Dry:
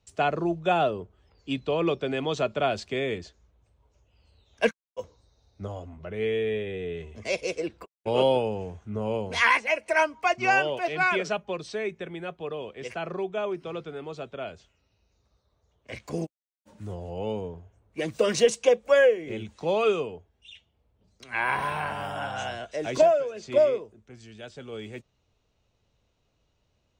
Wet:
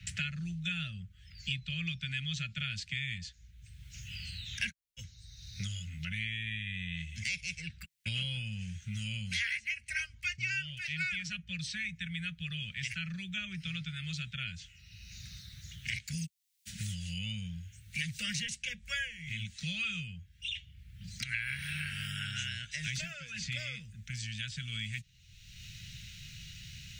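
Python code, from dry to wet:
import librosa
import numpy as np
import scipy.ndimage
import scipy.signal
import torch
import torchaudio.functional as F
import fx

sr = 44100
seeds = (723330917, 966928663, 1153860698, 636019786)

y = scipy.signal.sosfilt(scipy.signal.cheby2(4, 40, [280.0, 1100.0], 'bandstop', fs=sr, output='sos'), x)
y = fx.band_squash(y, sr, depth_pct=100)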